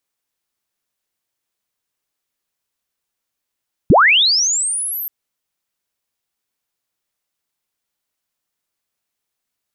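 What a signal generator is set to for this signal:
glide linear 88 Hz → 13,000 Hz −5.5 dBFS → −22.5 dBFS 1.18 s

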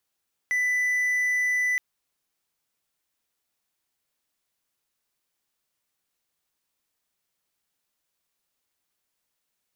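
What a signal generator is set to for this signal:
tone triangle 1,990 Hz −19.5 dBFS 1.27 s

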